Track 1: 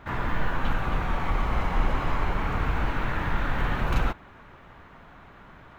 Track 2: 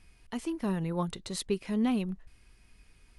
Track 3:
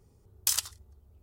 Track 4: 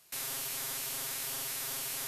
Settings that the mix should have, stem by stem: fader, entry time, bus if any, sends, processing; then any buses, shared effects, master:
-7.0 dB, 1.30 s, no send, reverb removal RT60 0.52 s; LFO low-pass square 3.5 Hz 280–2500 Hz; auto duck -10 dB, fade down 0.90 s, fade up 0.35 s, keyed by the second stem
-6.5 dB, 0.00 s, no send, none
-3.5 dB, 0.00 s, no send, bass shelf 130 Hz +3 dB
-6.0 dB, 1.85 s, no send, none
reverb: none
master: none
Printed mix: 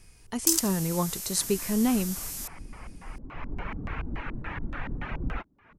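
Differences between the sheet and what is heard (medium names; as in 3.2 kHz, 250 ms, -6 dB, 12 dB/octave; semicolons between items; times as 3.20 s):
stem 2 -6.5 dB -> +3.5 dB; stem 4: entry 1.85 s -> 0.40 s; master: extra resonant high shelf 4.6 kHz +6.5 dB, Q 1.5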